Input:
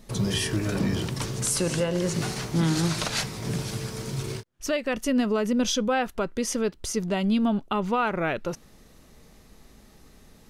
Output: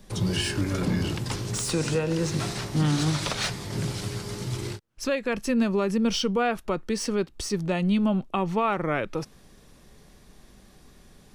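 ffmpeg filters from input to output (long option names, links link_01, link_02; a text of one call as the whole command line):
ffmpeg -i in.wav -filter_complex "[0:a]asetrate=40792,aresample=44100,acrossover=split=160|1600|4700[link_01][link_02][link_03][link_04];[link_04]asoftclip=type=tanh:threshold=-30dB[link_05];[link_01][link_02][link_03][link_05]amix=inputs=4:normalize=0" out.wav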